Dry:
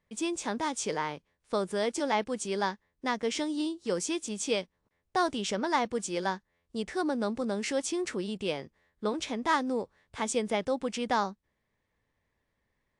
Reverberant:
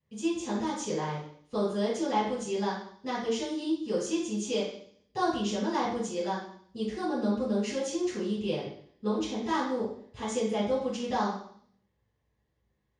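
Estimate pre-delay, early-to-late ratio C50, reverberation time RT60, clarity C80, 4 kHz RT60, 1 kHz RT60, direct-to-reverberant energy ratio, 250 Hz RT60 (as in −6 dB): 3 ms, 2.5 dB, 0.60 s, 7.0 dB, 0.70 s, 0.60 s, −10.0 dB, 0.70 s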